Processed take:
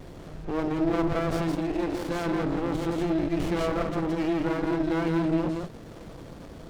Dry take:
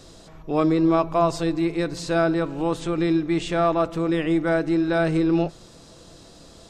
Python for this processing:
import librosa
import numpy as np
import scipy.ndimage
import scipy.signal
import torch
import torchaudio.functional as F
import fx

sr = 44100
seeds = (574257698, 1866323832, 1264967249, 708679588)

p1 = fx.high_shelf(x, sr, hz=7600.0, db=-10.0)
p2 = fx.over_compress(p1, sr, threshold_db=-31.0, ratio=-1.0)
p3 = p1 + F.gain(torch.from_numpy(p2), 1.5).numpy()
p4 = fx.vibrato(p3, sr, rate_hz=2.4, depth_cents=65.0)
p5 = fx.cheby1_highpass(p4, sr, hz=270.0, order=10, at=(1.55, 2.09))
p6 = p5 + 10.0 ** (-3.5 / 20.0) * np.pad(p5, (int(169 * sr / 1000.0), 0))[:len(p5)]
p7 = fx.running_max(p6, sr, window=33)
y = F.gain(torch.from_numpy(p7), -7.0).numpy()